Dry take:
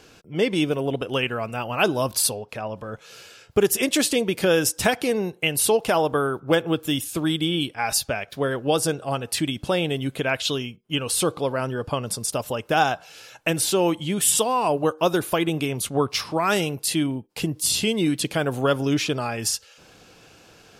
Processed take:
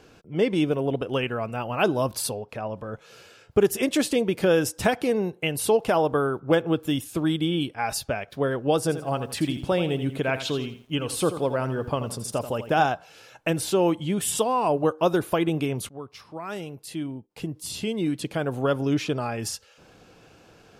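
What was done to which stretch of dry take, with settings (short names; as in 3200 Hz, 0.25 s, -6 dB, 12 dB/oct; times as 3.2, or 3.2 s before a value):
8.81–12.86 lo-fi delay 84 ms, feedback 35%, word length 8-bit, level -11 dB
15.89–19.45 fade in, from -17.5 dB
whole clip: high shelf 2000 Hz -8.5 dB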